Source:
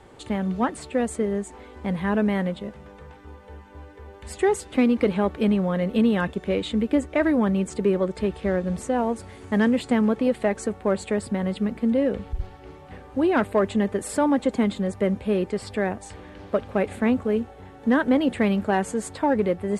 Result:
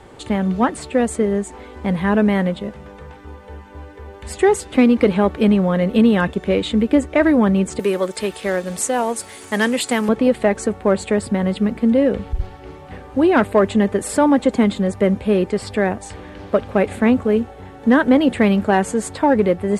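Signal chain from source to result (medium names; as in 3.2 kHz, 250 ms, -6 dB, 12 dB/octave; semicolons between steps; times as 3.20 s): 7.79–10.09 s: RIAA curve recording; trim +6.5 dB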